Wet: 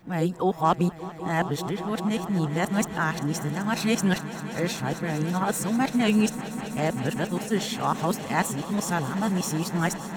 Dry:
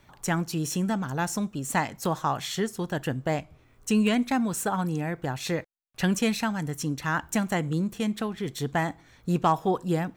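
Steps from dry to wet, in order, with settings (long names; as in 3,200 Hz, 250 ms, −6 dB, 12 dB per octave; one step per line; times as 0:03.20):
played backwards from end to start
echo that builds up and dies away 195 ms, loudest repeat 5, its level −17 dB
level +1 dB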